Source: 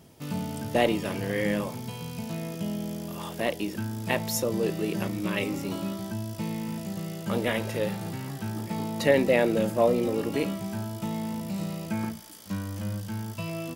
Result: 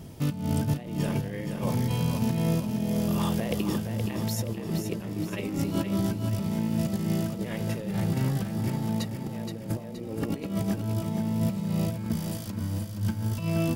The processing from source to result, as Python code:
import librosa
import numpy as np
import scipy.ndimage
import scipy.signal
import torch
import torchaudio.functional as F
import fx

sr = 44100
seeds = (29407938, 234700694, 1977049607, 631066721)

y = fx.low_shelf(x, sr, hz=210.0, db=11.5)
y = fx.over_compress(y, sr, threshold_db=-29.0, ratio=-0.5)
y = fx.echo_feedback(y, sr, ms=472, feedback_pct=47, wet_db=-6.5)